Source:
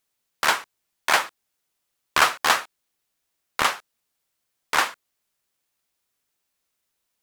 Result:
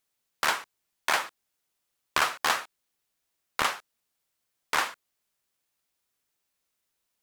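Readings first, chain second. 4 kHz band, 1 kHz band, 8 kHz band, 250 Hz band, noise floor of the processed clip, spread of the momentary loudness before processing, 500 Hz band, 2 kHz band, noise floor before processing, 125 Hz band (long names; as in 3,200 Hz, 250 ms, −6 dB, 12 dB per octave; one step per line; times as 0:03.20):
−6.0 dB, −6.0 dB, −5.5 dB, −5.0 dB, −81 dBFS, 12 LU, −5.5 dB, −6.0 dB, −78 dBFS, −5.0 dB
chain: downward compressor 3 to 1, threshold −19 dBFS, peak gain reduction 6 dB
level −2.5 dB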